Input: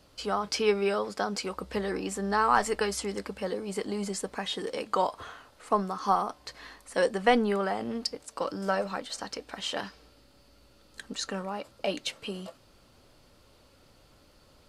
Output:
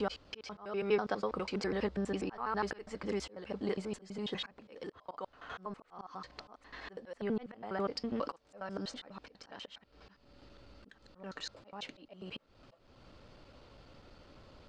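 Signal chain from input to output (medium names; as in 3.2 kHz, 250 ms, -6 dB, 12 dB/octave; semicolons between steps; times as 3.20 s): slices played last to first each 82 ms, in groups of 4; compression 1.5:1, threshold -44 dBFS, peak gain reduction 9.5 dB; distance through air 150 m; slow attack 351 ms; trim +3.5 dB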